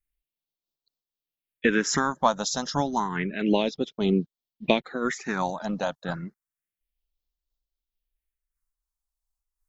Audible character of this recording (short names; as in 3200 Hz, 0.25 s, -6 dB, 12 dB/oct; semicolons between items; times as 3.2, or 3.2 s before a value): phasing stages 4, 0.3 Hz, lowest notch 370–1900 Hz; noise-modulated level